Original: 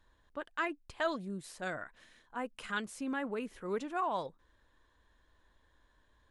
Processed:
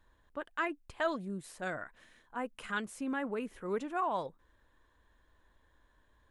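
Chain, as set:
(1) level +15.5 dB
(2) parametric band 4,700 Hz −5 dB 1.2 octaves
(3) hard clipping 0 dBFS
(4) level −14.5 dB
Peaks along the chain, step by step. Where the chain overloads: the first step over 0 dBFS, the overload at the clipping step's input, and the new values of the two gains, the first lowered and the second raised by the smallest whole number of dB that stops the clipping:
−5.0, −5.5, −5.5, −20.0 dBFS
no step passes full scale

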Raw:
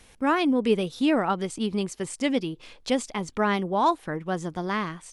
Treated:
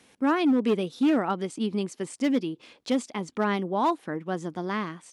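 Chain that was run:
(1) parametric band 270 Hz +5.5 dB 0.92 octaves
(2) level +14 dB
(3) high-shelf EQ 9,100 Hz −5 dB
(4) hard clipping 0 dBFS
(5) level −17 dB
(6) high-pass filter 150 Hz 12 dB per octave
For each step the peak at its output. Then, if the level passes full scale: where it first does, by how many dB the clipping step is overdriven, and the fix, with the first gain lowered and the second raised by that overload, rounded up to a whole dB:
−9.5, +4.5, +4.5, 0.0, −17.0, −13.0 dBFS
step 2, 4.5 dB
step 2 +9 dB, step 5 −12 dB

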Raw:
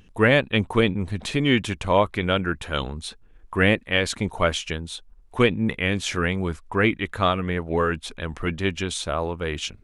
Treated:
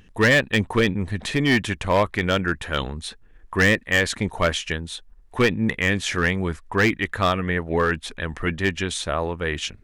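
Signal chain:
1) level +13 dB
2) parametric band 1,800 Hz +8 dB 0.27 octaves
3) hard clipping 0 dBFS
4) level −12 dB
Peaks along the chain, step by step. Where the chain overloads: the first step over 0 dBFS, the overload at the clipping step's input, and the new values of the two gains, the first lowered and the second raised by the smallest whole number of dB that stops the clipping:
+8.0, +9.5, 0.0, −12.0 dBFS
step 1, 9.5 dB
step 1 +3 dB, step 4 −2 dB

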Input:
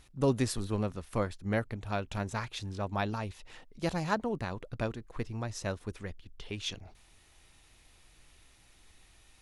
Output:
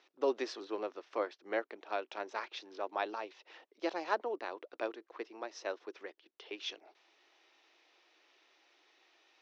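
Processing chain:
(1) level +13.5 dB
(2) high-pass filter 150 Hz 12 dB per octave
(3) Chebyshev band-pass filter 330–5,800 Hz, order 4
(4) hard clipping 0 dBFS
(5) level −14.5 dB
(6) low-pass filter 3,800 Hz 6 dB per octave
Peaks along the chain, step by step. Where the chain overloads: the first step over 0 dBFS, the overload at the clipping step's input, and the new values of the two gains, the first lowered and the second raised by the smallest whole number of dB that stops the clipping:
−2.5, −1.5, −3.5, −3.5, −18.0, −18.0 dBFS
no step passes full scale

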